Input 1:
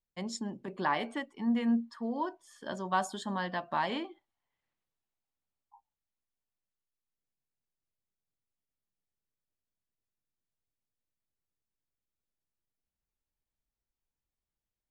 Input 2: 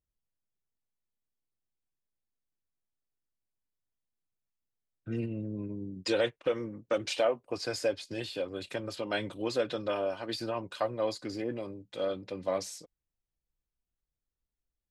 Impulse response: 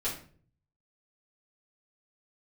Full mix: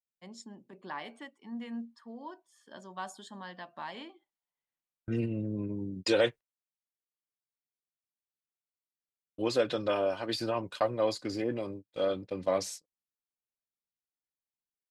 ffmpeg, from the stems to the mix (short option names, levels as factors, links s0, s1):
-filter_complex "[0:a]highpass=130,adynamicequalizer=threshold=0.00631:dfrequency=1800:dqfactor=0.7:tfrequency=1800:tqfactor=0.7:attack=5:release=100:ratio=0.375:range=2:mode=boostabove:tftype=highshelf,adelay=50,volume=0.299[s0];[1:a]agate=range=0.02:threshold=0.00708:ratio=16:detection=peak,volume=1.33,asplit=3[s1][s2][s3];[s1]atrim=end=6.41,asetpts=PTS-STARTPTS,afade=t=out:st=6.406:d=0.004:c=hsin[s4];[s2]atrim=start=6.41:end=9.38,asetpts=PTS-STARTPTS,volume=0[s5];[s3]atrim=start=9.38,asetpts=PTS-STARTPTS,afade=t=in:d=0.004:c=hsin[s6];[s4][s5][s6]concat=n=3:v=0:a=1[s7];[s0][s7]amix=inputs=2:normalize=0"